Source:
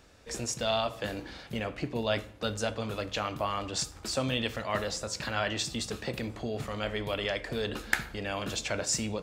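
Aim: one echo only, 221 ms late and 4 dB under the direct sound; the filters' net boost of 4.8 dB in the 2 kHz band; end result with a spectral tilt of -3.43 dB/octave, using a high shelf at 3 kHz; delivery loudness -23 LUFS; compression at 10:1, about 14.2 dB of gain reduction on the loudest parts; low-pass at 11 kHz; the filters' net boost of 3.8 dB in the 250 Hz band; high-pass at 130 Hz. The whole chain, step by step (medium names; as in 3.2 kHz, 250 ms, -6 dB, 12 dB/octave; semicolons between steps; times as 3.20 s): high-pass 130 Hz; low-pass 11 kHz; peaking EQ 250 Hz +5 dB; peaking EQ 2 kHz +7.5 dB; treble shelf 3 kHz -4 dB; compression 10:1, threshold -34 dBFS; delay 221 ms -4 dB; trim +14 dB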